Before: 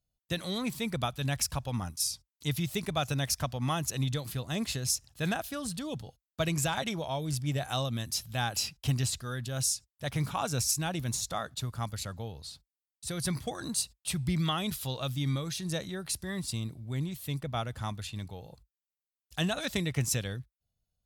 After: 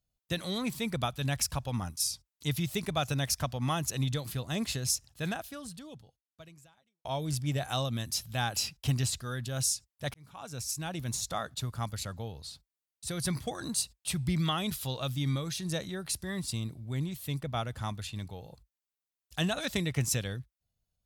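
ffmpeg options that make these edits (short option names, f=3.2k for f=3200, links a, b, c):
-filter_complex "[0:a]asplit=3[a][b][c];[a]atrim=end=7.05,asetpts=PTS-STARTPTS,afade=t=out:st=4.94:d=2.11:c=qua[d];[b]atrim=start=7.05:end=10.14,asetpts=PTS-STARTPTS,afade=t=in:d=0.004:c=hsin,afade=t=out:st=3.086:d=0.004:c=hsin[e];[c]atrim=start=10.14,asetpts=PTS-STARTPTS,afade=t=in:d=1.18[f];[d][e][f]concat=n=3:v=0:a=1"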